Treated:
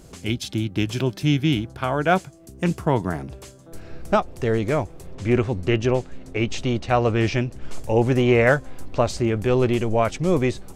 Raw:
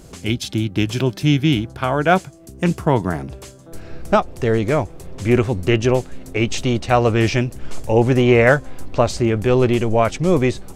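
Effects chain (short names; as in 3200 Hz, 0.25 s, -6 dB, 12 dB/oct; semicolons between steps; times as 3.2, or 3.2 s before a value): 5.15–7.62 air absorption 54 m; gain -4 dB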